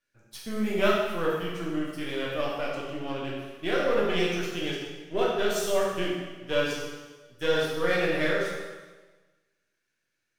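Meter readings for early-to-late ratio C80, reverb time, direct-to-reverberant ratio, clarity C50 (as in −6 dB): 2.5 dB, 1.3 s, −5.0 dB, 0.5 dB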